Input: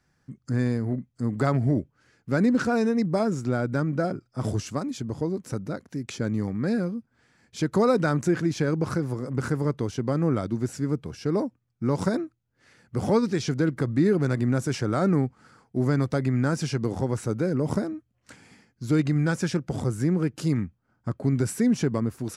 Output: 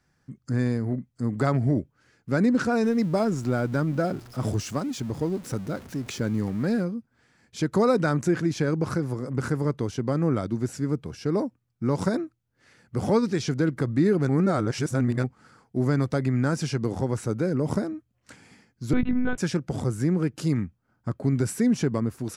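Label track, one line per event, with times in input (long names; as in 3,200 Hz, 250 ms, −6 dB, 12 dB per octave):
2.830000	6.830000	converter with a step at zero of −40.5 dBFS
14.290000	15.240000	reverse
18.930000	19.380000	one-pitch LPC vocoder at 8 kHz 250 Hz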